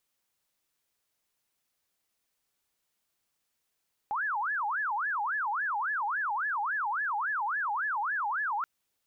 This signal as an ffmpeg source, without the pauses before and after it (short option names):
-f lavfi -i "aevalsrc='0.0398*sin(2*PI*(1270.5*t-459.5/(2*PI*3.6)*sin(2*PI*3.6*t)))':d=4.53:s=44100"